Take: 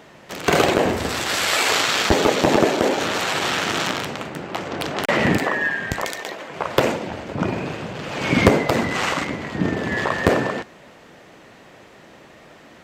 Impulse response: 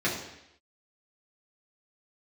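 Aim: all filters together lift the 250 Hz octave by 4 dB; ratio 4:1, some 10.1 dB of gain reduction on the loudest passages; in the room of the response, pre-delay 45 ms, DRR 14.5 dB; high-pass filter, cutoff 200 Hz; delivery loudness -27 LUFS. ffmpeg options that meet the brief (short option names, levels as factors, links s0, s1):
-filter_complex "[0:a]highpass=200,equalizer=f=250:t=o:g=7,acompressor=threshold=0.0794:ratio=4,asplit=2[s0][s1];[1:a]atrim=start_sample=2205,adelay=45[s2];[s1][s2]afir=irnorm=-1:irlink=0,volume=0.0501[s3];[s0][s3]amix=inputs=2:normalize=0,volume=0.841"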